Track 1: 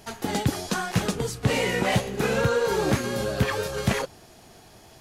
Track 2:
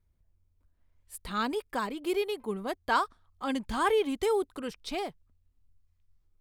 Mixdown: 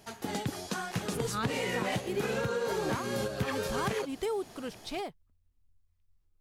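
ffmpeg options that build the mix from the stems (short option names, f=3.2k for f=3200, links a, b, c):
-filter_complex "[0:a]highpass=81,volume=-1dB[a];[1:a]volume=-2.5dB,asplit=2[b][c];[c]apad=whole_len=220896[d];[a][d]sidechaingate=range=-6dB:threshold=-59dB:ratio=16:detection=peak[e];[e][b]amix=inputs=2:normalize=0,acompressor=threshold=-28dB:ratio=10"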